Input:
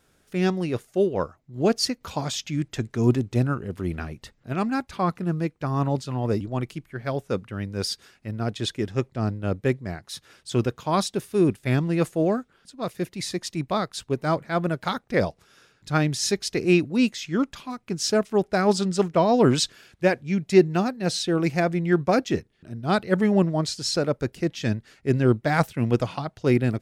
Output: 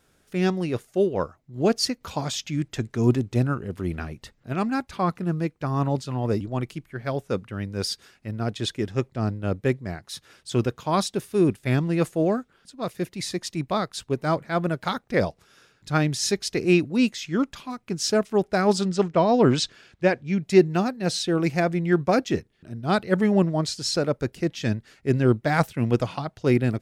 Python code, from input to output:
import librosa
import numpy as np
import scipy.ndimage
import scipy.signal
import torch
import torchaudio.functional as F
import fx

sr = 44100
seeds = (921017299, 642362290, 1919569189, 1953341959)

y = fx.bessel_lowpass(x, sr, hz=5900.0, order=2, at=(18.89, 20.43))